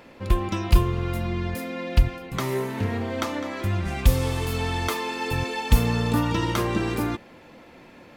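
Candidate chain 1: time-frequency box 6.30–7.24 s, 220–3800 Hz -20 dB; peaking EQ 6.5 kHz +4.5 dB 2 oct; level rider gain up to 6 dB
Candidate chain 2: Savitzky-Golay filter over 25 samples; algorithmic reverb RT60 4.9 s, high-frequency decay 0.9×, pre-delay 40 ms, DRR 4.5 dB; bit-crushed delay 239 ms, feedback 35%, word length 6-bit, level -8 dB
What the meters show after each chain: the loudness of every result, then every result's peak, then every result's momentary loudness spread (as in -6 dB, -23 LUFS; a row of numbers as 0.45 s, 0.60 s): -22.0 LUFS, -24.5 LUFS; -1.5 dBFS, -4.0 dBFS; 7 LU, 7 LU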